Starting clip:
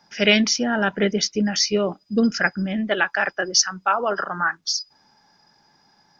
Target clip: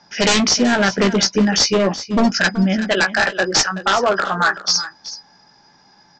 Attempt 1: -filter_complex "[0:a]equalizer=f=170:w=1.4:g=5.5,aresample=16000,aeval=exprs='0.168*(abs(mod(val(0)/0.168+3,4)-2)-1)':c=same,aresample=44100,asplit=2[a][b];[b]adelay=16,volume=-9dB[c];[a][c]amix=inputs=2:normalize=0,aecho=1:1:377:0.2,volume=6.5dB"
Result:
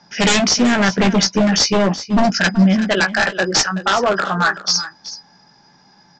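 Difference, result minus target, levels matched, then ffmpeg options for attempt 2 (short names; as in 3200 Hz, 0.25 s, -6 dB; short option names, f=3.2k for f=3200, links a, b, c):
125 Hz band +3.0 dB
-filter_complex "[0:a]aresample=16000,aeval=exprs='0.168*(abs(mod(val(0)/0.168+3,4)-2)-1)':c=same,aresample=44100,asplit=2[a][b];[b]adelay=16,volume=-9dB[c];[a][c]amix=inputs=2:normalize=0,aecho=1:1:377:0.2,volume=6.5dB"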